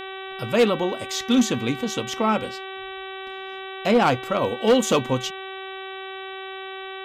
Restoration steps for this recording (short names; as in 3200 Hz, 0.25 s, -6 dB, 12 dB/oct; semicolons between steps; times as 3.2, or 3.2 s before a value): clip repair -11.5 dBFS; de-hum 382.7 Hz, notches 10